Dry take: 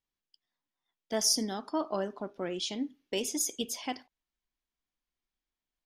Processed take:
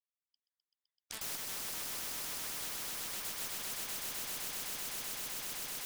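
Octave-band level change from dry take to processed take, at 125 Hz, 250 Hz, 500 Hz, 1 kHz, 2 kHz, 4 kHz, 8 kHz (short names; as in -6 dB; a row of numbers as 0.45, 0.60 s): -8.5, -19.5, -17.0, -8.0, +2.0, -5.5, -4.5 dB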